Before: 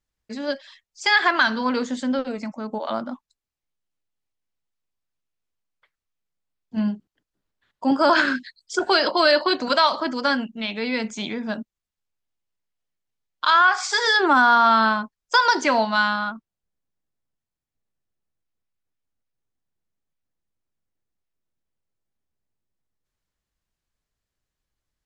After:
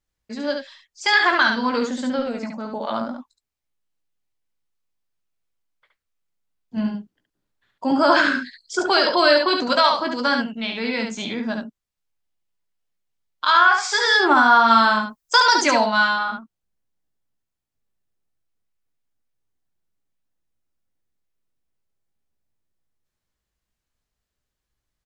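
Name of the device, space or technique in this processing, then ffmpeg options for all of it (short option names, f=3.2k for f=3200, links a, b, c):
slapback doubling: -filter_complex "[0:a]asettb=1/sr,asplit=3[a][b][c];[a]atrim=end=14.684[d];[b]atrim=start=14.68:end=15.79,asetpts=PTS-STARTPTS,afade=t=in:d=0.004:c=qsin,afade=t=out:st=1.106:d=0.004:c=qsin,aemphasis=mode=production:type=50kf[e];[c]atrim=start=15.786[f];[d][e]acrossfade=d=0.004:c1=hsin:c2=qsin[g];[g][f]acrossfade=d=0.004:c1=qsin:c2=hsin,asplit=3[h][i][j];[i]adelay=17,volume=-8.5dB[k];[j]adelay=70,volume=-4.5dB[l];[h][k][l]amix=inputs=3:normalize=0"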